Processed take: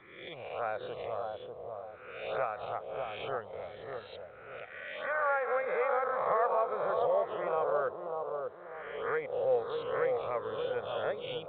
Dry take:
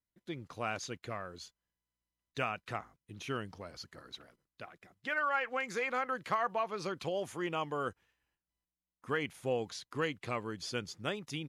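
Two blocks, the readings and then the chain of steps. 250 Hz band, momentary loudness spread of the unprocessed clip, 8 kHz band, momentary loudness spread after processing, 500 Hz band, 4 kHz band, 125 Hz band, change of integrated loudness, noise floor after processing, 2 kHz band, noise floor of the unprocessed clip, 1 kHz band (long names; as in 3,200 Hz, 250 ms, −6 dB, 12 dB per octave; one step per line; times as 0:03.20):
−8.5 dB, 16 LU, below −30 dB, 14 LU, +7.5 dB, −4.0 dB, −7.0 dB, +3.5 dB, −50 dBFS, −1.0 dB, below −85 dBFS, +4.0 dB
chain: peak hold with a rise ahead of every peak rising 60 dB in 1.06 s
transient designer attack −9 dB, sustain −5 dB
in parallel at −3 dB: downward compressor 6 to 1, threshold −46 dBFS, peak gain reduction 18 dB
on the sum: phaser swept by the level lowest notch 460 Hz, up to 2,900 Hz, full sweep at −31 dBFS
low shelf with overshoot 390 Hz −9 dB, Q 3
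bucket-brigade delay 593 ms, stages 4,096, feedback 36%, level −4 dB
A-law companding 64 kbit/s 8,000 Hz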